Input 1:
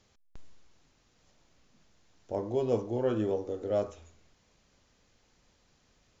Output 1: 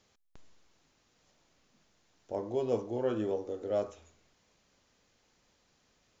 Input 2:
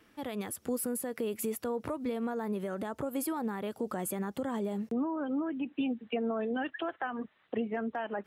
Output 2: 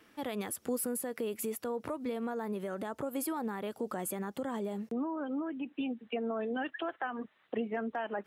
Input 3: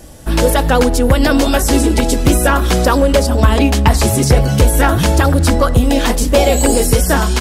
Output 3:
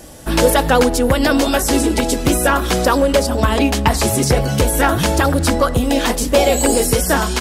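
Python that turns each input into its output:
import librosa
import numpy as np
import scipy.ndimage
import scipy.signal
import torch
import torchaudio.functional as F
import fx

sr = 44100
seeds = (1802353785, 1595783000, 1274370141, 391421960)

y = fx.low_shelf(x, sr, hz=130.0, db=-8.5)
y = fx.rider(y, sr, range_db=5, speed_s=2.0)
y = y * 10.0 ** (-1.0 / 20.0)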